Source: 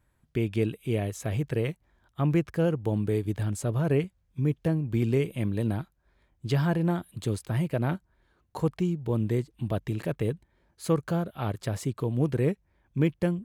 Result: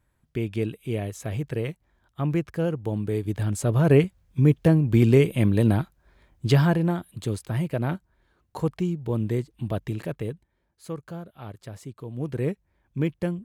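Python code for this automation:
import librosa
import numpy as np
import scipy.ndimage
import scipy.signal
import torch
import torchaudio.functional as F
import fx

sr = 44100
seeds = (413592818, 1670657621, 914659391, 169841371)

y = fx.gain(x, sr, db=fx.line((3.06, -0.5), (3.97, 8.0), (6.48, 8.0), (6.95, 1.0), (9.89, 1.0), (10.86, -9.0), (12.03, -9.0), (12.43, -1.0)))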